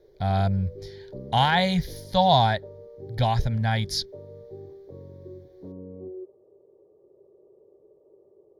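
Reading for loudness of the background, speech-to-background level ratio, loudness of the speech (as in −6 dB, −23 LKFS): −43.0 LKFS, 19.0 dB, −24.0 LKFS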